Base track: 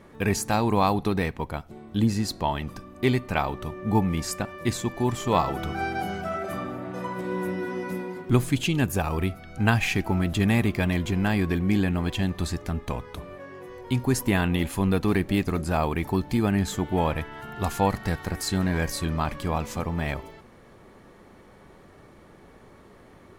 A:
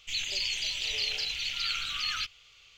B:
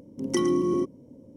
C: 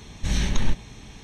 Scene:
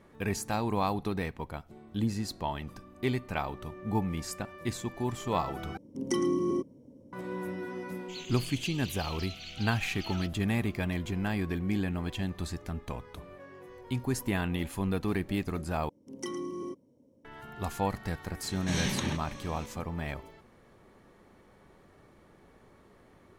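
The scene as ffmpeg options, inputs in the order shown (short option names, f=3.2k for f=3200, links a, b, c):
-filter_complex "[2:a]asplit=2[a][b];[0:a]volume=-7.5dB[c];[1:a]tiltshelf=f=970:g=-3[d];[b]lowshelf=f=410:g=-7.5[e];[3:a]highpass=f=120:w=0.5412,highpass=f=120:w=1.3066[f];[c]asplit=3[g][h][i];[g]atrim=end=5.774[j];[a]atrim=end=1.36,asetpts=PTS-STARTPTS,volume=-4.5dB[k];[h]atrim=start=7.126:end=15.894[l];[e]atrim=end=1.36,asetpts=PTS-STARTPTS,volume=-9dB[m];[i]atrim=start=17.246[n];[d]atrim=end=2.77,asetpts=PTS-STARTPTS,volume=-14.5dB,afade=t=in:d=0.004:c=hsin,afade=t=out:st=2.766:d=0.004:c=hsin,adelay=8010[o];[f]atrim=end=1.23,asetpts=PTS-STARTPTS,volume=-2dB,afade=t=in:d=0.004:c=hsin,afade=t=out:st=1.226:d=0.004:c=hsin,adelay=18430[p];[j][k]acrossfade=d=0.004:c1=hsin:c2=hsin[q];[q][l]acrossfade=d=0.004:c1=hsin:c2=hsin[r];[r][m]acrossfade=d=0.004:c1=hsin:c2=hsin[s];[s][n]acrossfade=d=0.004:c1=hsin:c2=hsin[t];[t][o][p]amix=inputs=3:normalize=0"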